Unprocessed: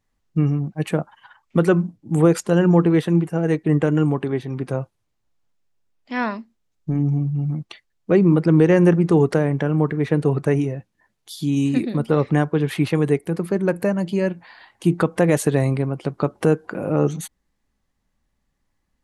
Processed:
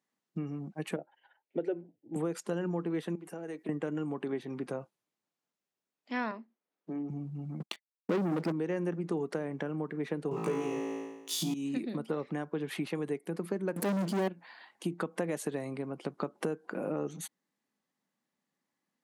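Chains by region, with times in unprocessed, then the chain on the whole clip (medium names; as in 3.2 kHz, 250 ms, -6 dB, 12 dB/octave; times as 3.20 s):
0.96–2.16 s: Bessel low-pass 1.8 kHz + static phaser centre 470 Hz, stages 4
3.15–3.69 s: high-pass 220 Hz + treble shelf 9 kHz +10 dB + compression 12:1, threshold -28 dBFS
6.31–7.10 s: high-pass 310 Hz + tape spacing loss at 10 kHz 23 dB + three bands compressed up and down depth 40%
7.60–8.52 s: expander -40 dBFS + waveshaping leveller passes 3
10.31–11.54 s: waveshaping leveller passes 2 + rippled EQ curve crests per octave 0.74, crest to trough 8 dB + flutter echo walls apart 3.1 m, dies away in 1 s
13.76–14.28 s: high-order bell 1.6 kHz -12.5 dB 2.7 oct + waveshaping leveller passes 5 + transient shaper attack -9 dB, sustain 0 dB
whole clip: compression, threshold -22 dBFS; high-pass 180 Hz 24 dB/octave; trim -7 dB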